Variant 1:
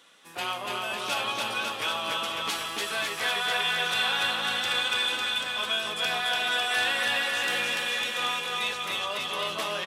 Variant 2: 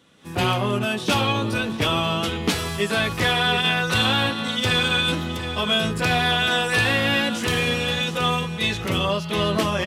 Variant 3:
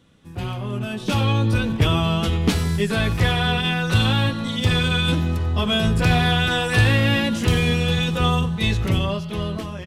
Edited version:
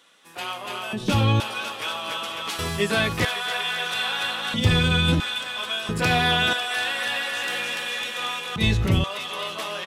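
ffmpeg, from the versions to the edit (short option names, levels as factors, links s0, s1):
-filter_complex "[2:a]asplit=3[s0][s1][s2];[1:a]asplit=2[s3][s4];[0:a]asplit=6[s5][s6][s7][s8][s9][s10];[s5]atrim=end=0.932[s11];[s0]atrim=start=0.928:end=1.402[s12];[s6]atrim=start=1.398:end=2.592[s13];[s3]atrim=start=2.588:end=3.252[s14];[s7]atrim=start=3.248:end=4.542[s15];[s1]atrim=start=4.538:end=5.202[s16];[s8]atrim=start=5.198:end=5.892[s17];[s4]atrim=start=5.888:end=6.532[s18];[s9]atrim=start=6.528:end=8.562[s19];[s2]atrim=start=8.558:end=9.042[s20];[s10]atrim=start=9.038[s21];[s11][s12]acrossfade=d=0.004:c1=hsin:c2=hsin[s22];[s22][s13]acrossfade=d=0.004:c1=hsin:c2=hsin[s23];[s23][s14]acrossfade=d=0.004:c1=hsin:c2=hsin[s24];[s24][s15]acrossfade=d=0.004:c1=hsin:c2=hsin[s25];[s25][s16]acrossfade=d=0.004:c1=hsin:c2=hsin[s26];[s26][s17]acrossfade=d=0.004:c1=hsin:c2=hsin[s27];[s27][s18]acrossfade=d=0.004:c1=hsin:c2=hsin[s28];[s28][s19]acrossfade=d=0.004:c1=hsin:c2=hsin[s29];[s29][s20]acrossfade=d=0.004:c1=hsin:c2=hsin[s30];[s30][s21]acrossfade=d=0.004:c1=hsin:c2=hsin"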